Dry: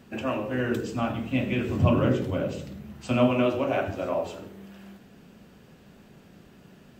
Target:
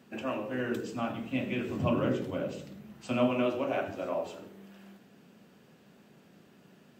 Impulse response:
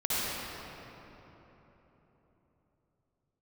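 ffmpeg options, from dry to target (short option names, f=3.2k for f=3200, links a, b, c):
-af "highpass=150,volume=-5dB"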